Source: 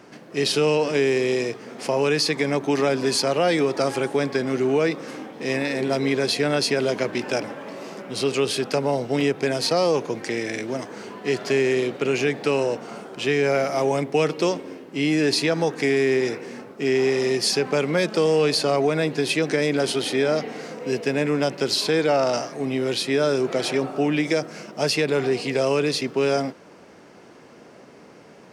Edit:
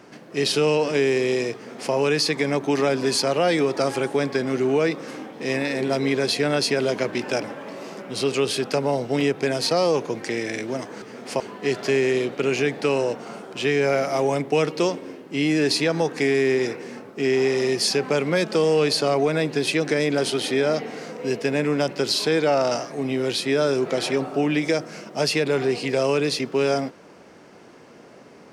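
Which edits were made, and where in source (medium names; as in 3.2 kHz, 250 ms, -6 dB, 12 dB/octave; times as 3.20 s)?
1.55–1.93 s: copy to 11.02 s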